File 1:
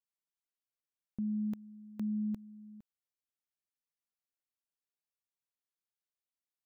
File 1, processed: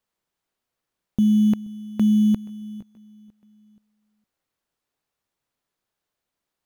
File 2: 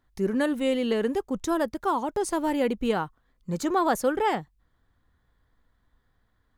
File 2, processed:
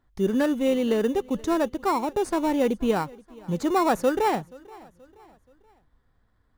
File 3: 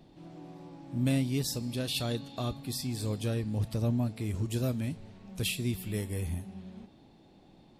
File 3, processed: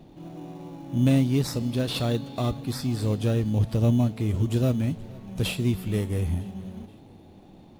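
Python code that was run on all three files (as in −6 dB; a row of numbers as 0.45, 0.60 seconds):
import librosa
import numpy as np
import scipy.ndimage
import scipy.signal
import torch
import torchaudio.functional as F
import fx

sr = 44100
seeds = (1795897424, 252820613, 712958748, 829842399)

p1 = fx.high_shelf(x, sr, hz=4500.0, db=-8.0)
p2 = fx.sample_hold(p1, sr, seeds[0], rate_hz=3200.0, jitter_pct=0)
p3 = p1 + (p2 * 10.0 ** (-8.5 / 20.0))
p4 = fx.echo_feedback(p3, sr, ms=478, feedback_pct=44, wet_db=-23)
y = p4 * 10.0 ** (-26 / 20.0) / np.sqrt(np.mean(np.square(p4)))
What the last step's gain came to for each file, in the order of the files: +15.0, 0.0, +5.0 decibels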